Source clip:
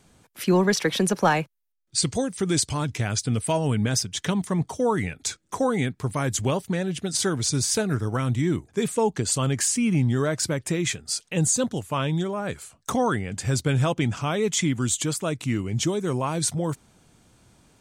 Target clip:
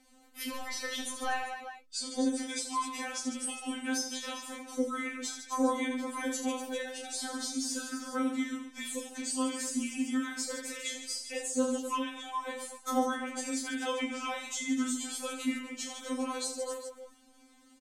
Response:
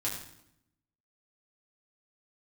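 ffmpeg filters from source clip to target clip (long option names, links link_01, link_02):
-filter_complex "[0:a]aecho=1:1:30|75|142.5|243.8|395.6:0.631|0.398|0.251|0.158|0.1,acrossover=split=160|1200[link_01][link_02][link_03];[link_01]acompressor=threshold=-32dB:ratio=4[link_04];[link_02]acompressor=threshold=-30dB:ratio=4[link_05];[link_03]acompressor=threshold=-31dB:ratio=4[link_06];[link_04][link_05][link_06]amix=inputs=3:normalize=0,afftfilt=real='re*3.46*eq(mod(b,12),0)':imag='im*3.46*eq(mod(b,12),0)':win_size=2048:overlap=0.75,volume=-2.5dB"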